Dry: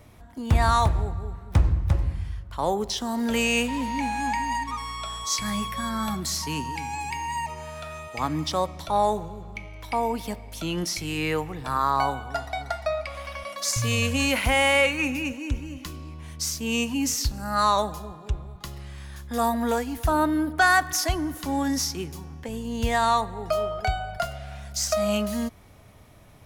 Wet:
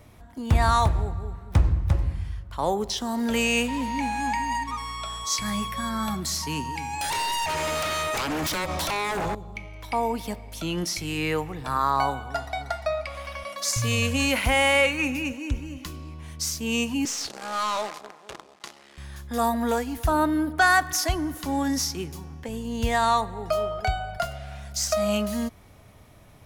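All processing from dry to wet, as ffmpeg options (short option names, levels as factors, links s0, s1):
-filter_complex "[0:a]asettb=1/sr,asplit=3[s0][s1][s2];[s0]atrim=end=7.014[s3];[s1]atrim=start=7.01:end=9.35,asetpts=PTS-STARTPTS,afade=t=in:d=0.004:c=qsin,afade=t=out:st=2.336:d=0.004:c=qsin,lowshelf=f=320:g=-9,acompressor=threshold=0.02:ratio=5:attack=3.2:release=140:knee=1:detection=peak,aeval=exprs='0.0631*sin(PI/2*5.01*val(0)/0.0631)':c=same[s4];[s2]atrim=start=9.346[s5];[s3][s4]acrossfade=d=0.004:c1=hsin:c2=qsin[s6];[s6][s5]acrossfade=d=0.004:c1=qsin:c2=hsin,asettb=1/sr,asplit=3[s7][s8][s9];[s7]atrim=end=17.054[s10];[s8]atrim=start=17.05:end=18.98,asetpts=PTS-STARTPTS,afade=t=in:d=0.004:c=qsin,afade=t=out:st=1.926:d=0.004:c=qsin,acrusher=bits=6:dc=4:mix=0:aa=0.000001,highpass=370,lowpass=7500,aeval=exprs='(tanh(12.6*val(0)+0.2)-tanh(0.2))/12.6':c=same[s11];[s9]atrim=start=18.976[s12];[s10][s11]acrossfade=d=0.004:c1=hsin:c2=qsin[s13];[s13][s12]acrossfade=d=0.004:c1=qsin:c2=hsin"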